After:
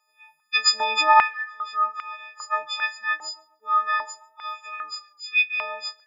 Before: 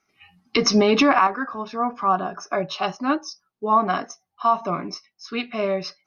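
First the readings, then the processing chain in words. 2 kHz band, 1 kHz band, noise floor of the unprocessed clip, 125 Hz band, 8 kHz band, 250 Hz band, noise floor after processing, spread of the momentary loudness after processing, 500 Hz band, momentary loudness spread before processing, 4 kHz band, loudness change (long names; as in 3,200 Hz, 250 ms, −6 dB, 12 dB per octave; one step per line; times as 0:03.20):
+4.5 dB, −1.0 dB, −77 dBFS, below −30 dB, can't be measured, below −30 dB, −68 dBFS, 18 LU, −14.0 dB, 14 LU, +2.5 dB, −0.5 dB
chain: every partial snapped to a pitch grid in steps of 6 semitones
tape delay 140 ms, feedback 39%, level −20 dB, low-pass 1,900 Hz
high-pass on a step sequencer 2.5 Hz 760–2,500 Hz
level −8.5 dB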